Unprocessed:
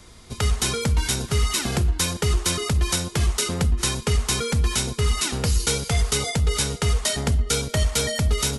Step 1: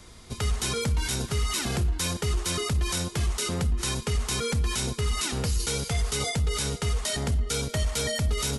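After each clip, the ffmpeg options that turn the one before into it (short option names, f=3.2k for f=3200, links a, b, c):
-af "alimiter=limit=-17.5dB:level=0:latency=1:release=23,volume=-1.5dB"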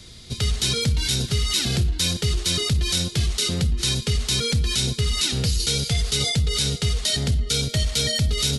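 -af "equalizer=f=125:t=o:w=1:g=6,equalizer=f=1k:t=o:w=1:g=-9,equalizer=f=4k:t=o:w=1:g=10,volume=2dB"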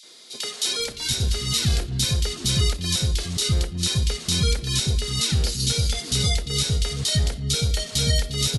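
-filter_complex "[0:a]acrossover=split=310|2500[a][b][c];[b]adelay=30[d];[a]adelay=790[e];[e][d][c]amix=inputs=3:normalize=0"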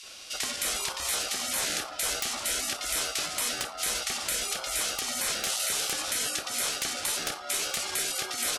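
-af "aeval=exprs='val(0)*sin(2*PI*1000*n/s)':c=same,afftfilt=real='re*lt(hypot(re,im),0.0501)':imag='im*lt(hypot(re,im),0.0501)':win_size=1024:overlap=0.75,aeval=exprs='(mod(7.94*val(0)+1,2)-1)/7.94':c=same,volume=5dB"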